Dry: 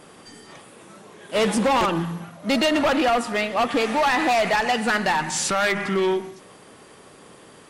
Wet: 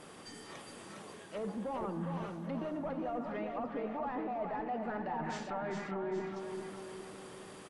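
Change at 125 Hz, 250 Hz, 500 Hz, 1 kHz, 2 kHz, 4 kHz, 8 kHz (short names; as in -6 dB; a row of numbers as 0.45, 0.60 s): -11.0, -14.0, -15.5, -17.0, -23.5, -26.0, -24.5 dB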